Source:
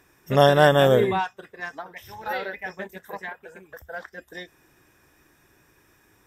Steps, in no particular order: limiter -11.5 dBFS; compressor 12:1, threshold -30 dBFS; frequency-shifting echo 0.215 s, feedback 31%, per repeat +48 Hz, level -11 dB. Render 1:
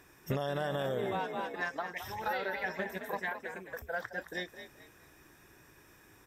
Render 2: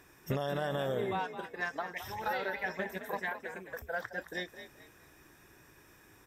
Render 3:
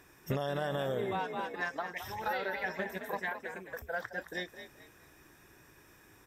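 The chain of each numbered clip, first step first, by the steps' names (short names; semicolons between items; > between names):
frequency-shifting echo > limiter > compressor; limiter > compressor > frequency-shifting echo; limiter > frequency-shifting echo > compressor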